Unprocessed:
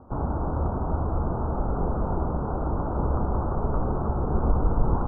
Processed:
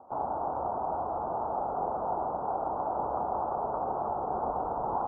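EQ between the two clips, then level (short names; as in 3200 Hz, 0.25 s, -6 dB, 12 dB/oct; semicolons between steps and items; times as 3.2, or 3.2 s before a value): band-pass 770 Hz, Q 3.1; +5.5 dB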